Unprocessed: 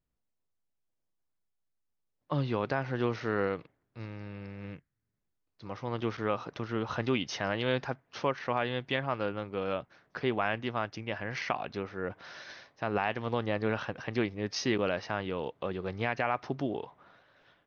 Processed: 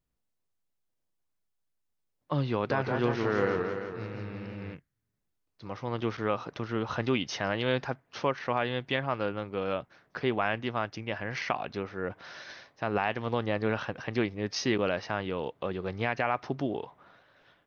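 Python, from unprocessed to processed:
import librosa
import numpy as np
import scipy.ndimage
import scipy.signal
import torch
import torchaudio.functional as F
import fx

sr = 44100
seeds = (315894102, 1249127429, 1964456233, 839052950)

y = fx.echo_warbled(x, sr, ms=169, feedback_pct=59, rate_hz=2.8, cents=141, wet_db=-4.5, at=(2.53, 4.74))
y = y * librosa.db_to_amplitude(1.5)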